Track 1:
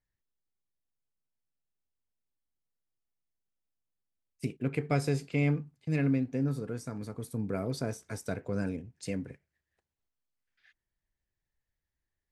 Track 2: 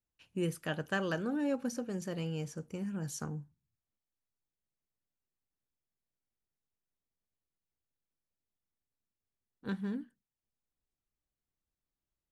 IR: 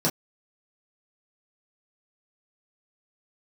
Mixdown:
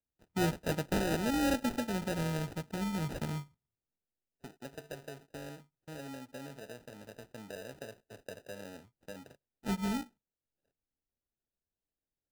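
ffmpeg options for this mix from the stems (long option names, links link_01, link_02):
-filter_complex "[0:a]equalizer=frequency=600:width_type=o:width=0.76:gain=12.5,acrossover=split=190|850[link_01][link_02][link_03];[link_01]acompressor=threshold=-46dB:ratio=4[link_04];[link_02]acompressor=threshold=-32dB:ratio=4[link_05];[link_03]acompressor=threshold=-47dB:ratio=4[link_06];[link_04][link_05][link_06]amix=inputs=3:normalize=0,volume=-12dB[link_07];[1:a]acrusher=samples=18:mix=1:aa=0.000001,volume=3dB[link_08];[link_07][link_08]amix=inputs=2:normalize=0,agate=range=-9dB:threshold=-56dB:ratio=16:detection=peak,acrusher=samples=40:mix=1:aa=0.000001"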